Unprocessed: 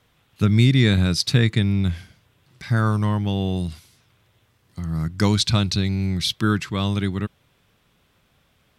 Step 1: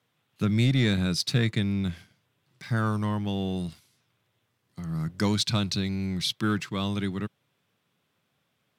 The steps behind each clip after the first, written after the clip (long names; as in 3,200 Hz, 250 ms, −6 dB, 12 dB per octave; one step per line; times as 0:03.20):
high-pass filter 110 Hz 24 dB per octave
leveller curve on the samples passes 1
level −8.5 dB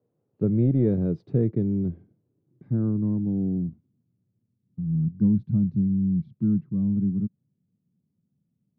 low-pass filter sweep 450 Hz → 200 Hz, 0:01.03–0:04.72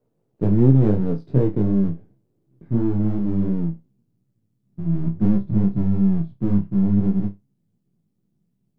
gain on one half-wave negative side −7 dB
chorus effect 2.8 Hz, delay 15 ms, depth 4.4 ms
flutter between parallel walls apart 5.2 metres, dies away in 0.2 s
level +8.5 dB